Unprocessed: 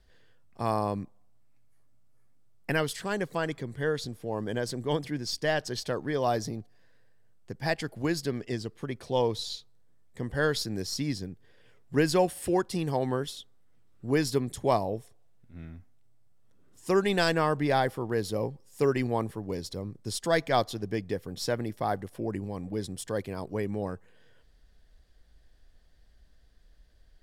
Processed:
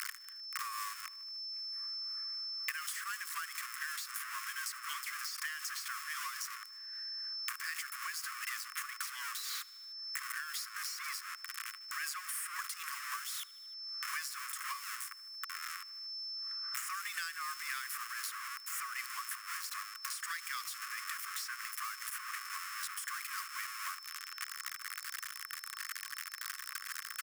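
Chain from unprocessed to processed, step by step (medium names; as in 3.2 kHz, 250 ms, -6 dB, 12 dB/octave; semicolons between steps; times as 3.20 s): jump at every zero crossing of -27 dBFS; Chebyshev high-pass 1.1 kHz, order 8; peaking EQ 3.8 kHz -12 dB 0.98 oct; compression, threshold -36 dBFS, peak gain reduction 10 dB; tremolo triangle 3.9 Hz, depth 50%; on a send: feedback delay 76 ms, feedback 59%, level -23 dB; on the sum: whistle 5.3 kHz -56 dBFS; three bands compressed up and down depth 100%; trim +2.5 dB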